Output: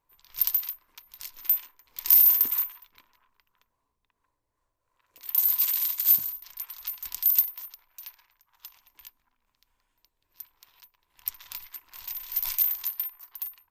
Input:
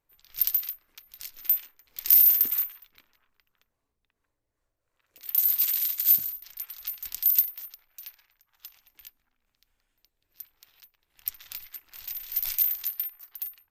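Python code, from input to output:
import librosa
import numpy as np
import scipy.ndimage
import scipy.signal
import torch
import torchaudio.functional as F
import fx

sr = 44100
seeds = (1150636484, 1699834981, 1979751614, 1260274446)

y = fx.peak_eq(x, sr, hz=1000.0, db=14.5, octaves=0.26)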